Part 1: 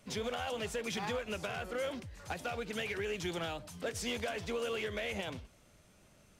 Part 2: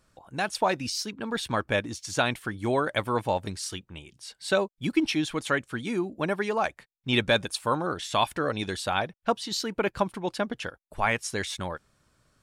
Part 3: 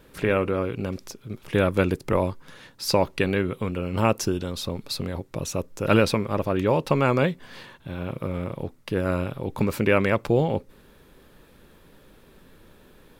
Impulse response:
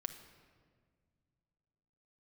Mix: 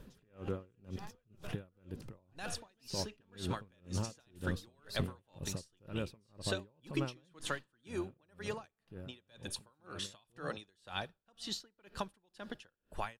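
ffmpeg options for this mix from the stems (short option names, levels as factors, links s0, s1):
-filter_complex "[0:a]volume=0.376[s0];[1:a]acrossover=split=330|1700|3500[s1][s2][s3][s4];[s1]acompressor=threshold=0.00251:ratio=4[s5];[s2]acompressor=threshold=0.0112:ratio=4[s6];[s3]acompressor=threshold=0.00891:ratio=4[s7];[s4]acompressor=threshold=0.0126:ratio=4[s8];[s5][s6][s7][s8]amix=inputs=4:normalize=0,adelay=2000,volume=0.631,asplit=2[s9][s10];[s10]volume=0.422[s11];[2:a]acompressor=threshold=0.0501:ratio=2.5,alimiter=limit=0.0708:level=0:latency=1:release=276,volume=0.422,afade=t=out:st=7.36:d=0.47:silence=0.298538,asplit=3[s12][s13][s14];[s13]volume=0.266[s15];[s14]apad=whole_len=281979[s16];[s0][s16]sidechaincompress=threshold=0.00355:ratio=8:attack=16:release=105[s17];[3:a]atrim=start_sample=2205[s18];[s11][s15]amix=inputs=2:normalize=0[s19];[s19][s18]afir=irnorm=-1:irlink=0[s20];[s17][s9][s12][s20]amix=inputs=4:normalize=0,lowshelf=f=210:g=10,bandreject=f=2200:w=8.8,aeval=exprs='val(0)*pow(10,-36*(0.5-0.5*cos(2*PI*2*n/s))/20)':c=same"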